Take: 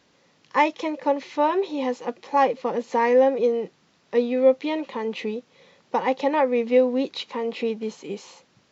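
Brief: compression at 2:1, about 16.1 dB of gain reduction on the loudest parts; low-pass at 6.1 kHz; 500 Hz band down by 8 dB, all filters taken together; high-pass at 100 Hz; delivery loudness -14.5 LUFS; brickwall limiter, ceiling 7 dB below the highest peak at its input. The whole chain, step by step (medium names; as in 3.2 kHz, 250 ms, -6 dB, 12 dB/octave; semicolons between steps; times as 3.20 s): high-pass 100 Hz; low-pass 6.1 kHz; peaking EQ 500 Hz -8.5 dB; compression 2:1, threshold -48 dBFS; trim +28.5 dB; peak limiter -3 dBFS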